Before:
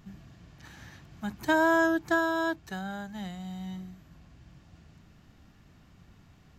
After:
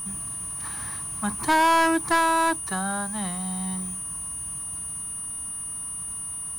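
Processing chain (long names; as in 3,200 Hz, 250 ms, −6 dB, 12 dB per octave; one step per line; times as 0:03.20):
parametric band 1,100 Hz +15 dB 0.44 octaves
steady tone 9,400 Hz −36 dBFS
leveller curve on the samples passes 3
level −5.5 dB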